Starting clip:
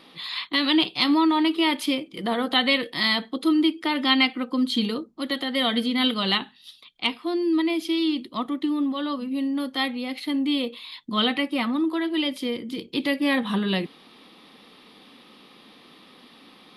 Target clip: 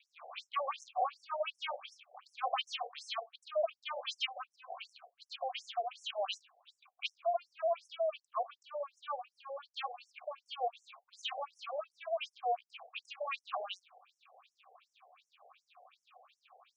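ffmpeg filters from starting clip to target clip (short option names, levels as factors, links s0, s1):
-filter_complex "[0:a]aeval=exprs='max(val(0),0)':c=same,asplit=3[s0][s1][s2];[s0]bandpass=f=730:t=q:w=8,volume=1[s3];[s1]bandpass=f=1090:t=q:w=8,volume=0.501[s4];[s2]bandpass=f=2440:t=q:w=8,volume=0.355[s5];[s3][s4][s5]amix=inputs=3:normalize=0,afftfilt=real='re*between(b*sr/1024,600*pow(7700/600,0.5+0.5*sin(2*PI*2.7*pts/sr))/1.41,600*pow(7700/600,0.5+0.5*sin(2*PI*2.7*pts/sr))*1.41)':imag='im*between(b*sr/1024,600*pow(7700/600,0.5+0.5*sin(2*PI*2.7*pts/sr))/1.41,600*pow(7700/600,0.5+0.5*sin(2*PI*2.7*pts/sr))*1.41)':win_size=1024:overlap=0.75,volume=3.55"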